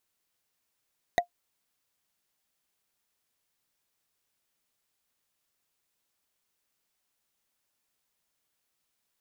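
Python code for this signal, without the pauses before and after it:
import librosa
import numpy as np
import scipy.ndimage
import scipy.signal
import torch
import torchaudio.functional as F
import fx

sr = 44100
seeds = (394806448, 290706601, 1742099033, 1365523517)

y = fx.strike_wood(sr, length_s=0.45, level_db=-15.0, body='bar', hz=702.0, decay_s=0.1, tilt_db=4.0, modes=5)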